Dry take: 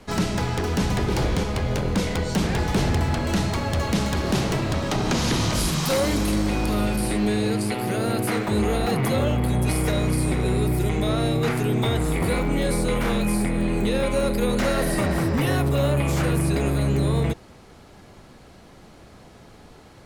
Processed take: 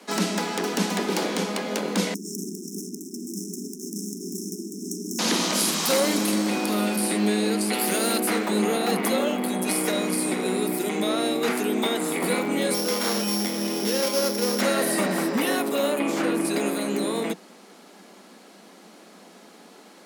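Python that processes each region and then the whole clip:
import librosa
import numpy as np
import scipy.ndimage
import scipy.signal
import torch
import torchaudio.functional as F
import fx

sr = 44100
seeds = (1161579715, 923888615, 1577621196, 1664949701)

y = fx.chain(x, sr, fx.clip_hard(threshold_db=-29.5),
    fx.brickwall_bandstop(low_hz=430.0, high_hz=5200.0),
    fx.env_flatten(amount_pct=100), at=(2.14, 5.19))
y = fx.chain(y, sr, fx.high_shelf(hz=2300.0, db=9.0),
    fx.clip_hard(threshold_db=-19.0), at=(7.73, 8.18))
y = fx.chain(y, sr, fx.sample_sort(block=8),
    fx.low_shelf(hz=230.0, db=-7.5), at=(12.74, 14.61))
y = fx.chain(y, sr, fx.lowpass(hz=3500.0, slope=6),
    fx.peak_eq(hz=290.0, db=6.5, octaves=0.38), at=(15.99, 16.45))
y = scipy.signal.sosfilt(scipy.signal.butter(16, 180.0, 'highpass', fs=sr, output='sos'), y)
y = fx.high_shelf(y, sr, hz=4300.0, db=6.0)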